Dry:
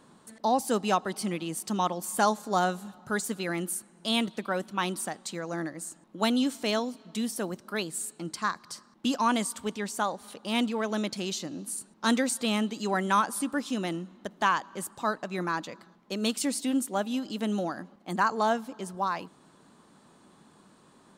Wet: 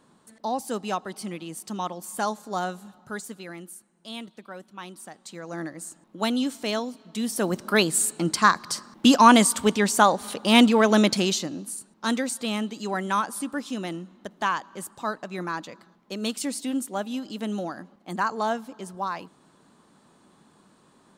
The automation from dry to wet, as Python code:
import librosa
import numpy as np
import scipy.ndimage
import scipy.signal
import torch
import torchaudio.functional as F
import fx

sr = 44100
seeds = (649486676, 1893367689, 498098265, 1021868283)

y = fx.gain(x, sr, db=fx.line((2.98, -3.0), (3.75, -10.5), (4.95, -10.5), (5.63, 0.5), (7.13, 0.5), (7.62, 11.5), (11.14, 11.5), (11.78, -0.5)))